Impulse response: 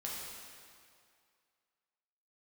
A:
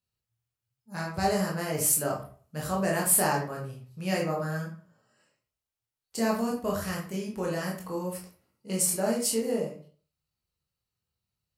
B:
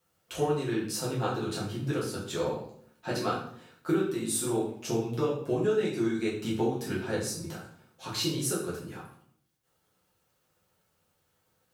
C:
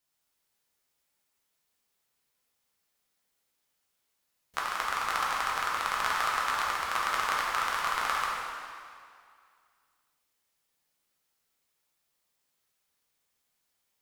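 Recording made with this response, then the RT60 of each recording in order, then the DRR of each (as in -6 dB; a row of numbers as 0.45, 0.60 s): C; 0.45, 0.60, 2.2 s; -3.0, -7.0, -5.0 dB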